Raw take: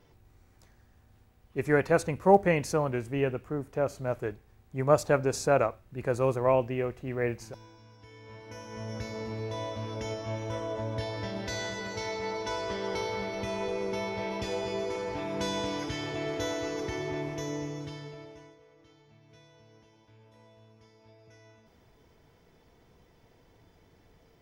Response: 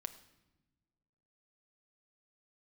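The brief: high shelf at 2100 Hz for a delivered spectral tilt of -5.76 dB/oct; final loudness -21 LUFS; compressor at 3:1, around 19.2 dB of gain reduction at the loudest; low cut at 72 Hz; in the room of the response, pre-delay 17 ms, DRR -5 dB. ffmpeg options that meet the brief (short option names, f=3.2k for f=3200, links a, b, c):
-filter_complex "[0:a]highpass=72,highshelf=f=2.1k:g=-7,acompressor=threshold=-43dB:ratio=3,asplit=2[a][b];[1:a]atrim=start_sample=2205,adelay=17[c];[b][c]afir=irnorm=-1:irlink=0,volume=7.5dB[d];[a][d]amix=inputs=2:normalize=0,volume=17dB"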